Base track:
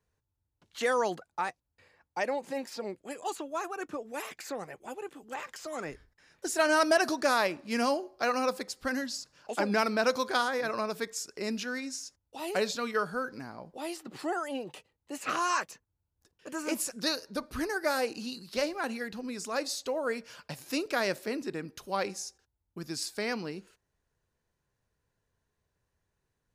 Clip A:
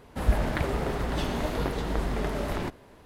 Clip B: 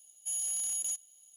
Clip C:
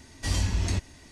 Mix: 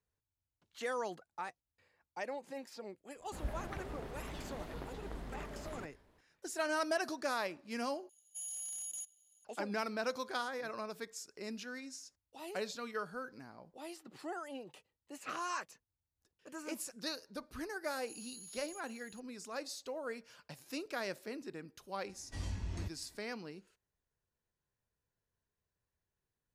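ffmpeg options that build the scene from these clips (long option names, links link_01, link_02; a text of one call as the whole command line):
ffmpeg -i bed.wav -i cue0.wav -i cue1.wav -i cue2.wav -filter_complex "[2:a]asplit=2[link_01][link_02];[0:a]volume=-10dB[link_03];[link_02]acompressor=threshold=-50dB:ratio=6:attack=3.2:release=140:knee=1:detection=peak[link_04];[3:a]highshelf=frequency=2600:gain=-7[link_05];[link_03]asplit=2[link_06][link_07];[link_06]atrim=end=8.094[link_08];[link_01]atrim=end=1.36,asetpts=PTS-STARTPTS,volume=-9.5dB[link_09];[link_07]atrim=start=9.446[link_10];[1:a]atrim=end=3.05,asetpts=PTS-STARTPTS,volume=-16.5dB,afade=type=in:duration=0.004:curve=hsin,afade=type=out:start_time=3.046:duration=0.004:curve=hsin,adelay=3160[link_11];[link_04]atrim=end=1.36,asetpts=PTS-STARTPTS,volume=-2dB,afade=type=in:duration=0.004:curve=hsin,afade=type=out:start_time=1.356:duration=0.004:curve=hsin,adelay=17840[link_12];[link_05]atrim=end=1.11,asetpts=PTS-STARTPTS,volume=-13.5dB,afade=type=in:duration=0.004:curve=hsin,afade=type=out:start_time=1.106:duration=0.004:curve=hsin,adelay=22090[link_13];[link_08][link_09]acrossfade=duration=0.004:curve1=hsin:curve2=hsin[link_14];[link_14][link_10]acrossfade=duration=0.004:curve1=hsin:curve2=hsin[link_15];[link_15][link_11][link_12][link_13]amix=inputs=4:normalize=0" out.wav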